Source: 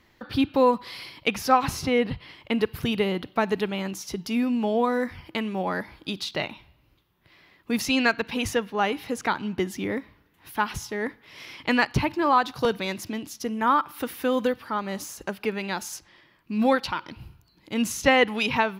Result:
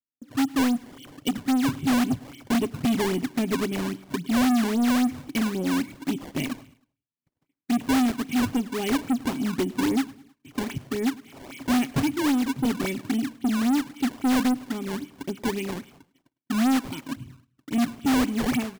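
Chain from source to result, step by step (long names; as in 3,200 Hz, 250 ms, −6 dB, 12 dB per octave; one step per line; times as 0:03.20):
formant resonators in series i
gain on a spectral selection 0:00.32–0:01.77, 640–2,700 Hz −15 dB
high-pass filter 79 Hz 12 dB per octave
comb filter 7.5 ms, depth 52%
automatic gain control gain up to 15.5 dB
noise gate −50 dBFS, range −37 dB
sample-and-hold swept by an LFO 20×, swing 160% 3.7 Hz
soft clipping −19 dBFS, distortion −6 dB
repeating echo 104 ms, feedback 47%, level −23 dB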